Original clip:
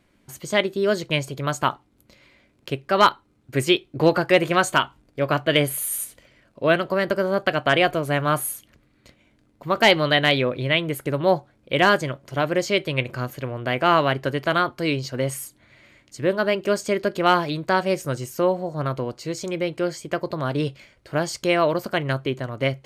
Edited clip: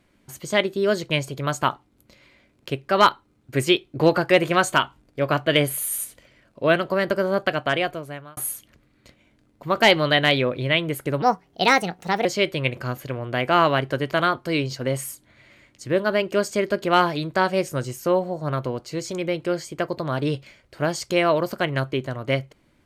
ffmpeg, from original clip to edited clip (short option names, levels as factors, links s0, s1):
-filter_complex "[0:a]asplit=4[s0][s1][s2][s3];[s0]atrim=end=8.37,asetpts=PTS-STARTPTS,afade=t=out:st=7.37:d=1[s4];[s1]atrim=start=8.37:end=11.224,asetpts=PTS-STARTPTS,afade=t=in:d=0.004:c=hsin[s5];[s2]atrim=start=11.22:end=12.58,asetpts=PTS-STARTPTS,asetrate=58212,aresample=44100,atrim=end_sample=45436,asetpts=PTS-STARTPTS[s6];[s3]atrim=start=12.576[s7];[s4][s5]concat=n=2:v=0:a=1[s8];[s8][s6]acrossfade=d=0.004:c1=hsin:c2=hsin[s9];[s9][s7]acrossfade=d=0.004:c1=hsin:c2=hsin"